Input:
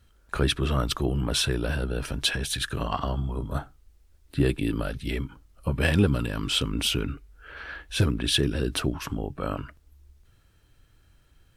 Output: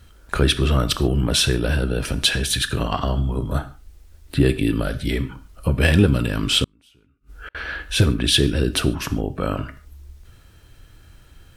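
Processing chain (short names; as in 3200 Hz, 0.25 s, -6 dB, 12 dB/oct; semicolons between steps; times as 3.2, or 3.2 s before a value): non-linear reverb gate 0.17 s falling, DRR 11.5 dB; in parallel at +1 dB: compressor, threshold -38 dBFS, peak gain reduction 20.5 dB; 4.82–5.26 on the sum: notch 2700 Hz, Q 9.5; 6.64–7.55 flipped gate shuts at -30 dBFS, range -37 dB; dynamic EQ 980 Hz, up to -4 dB, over -42 dBFS, Q 1.4; gain +5 dB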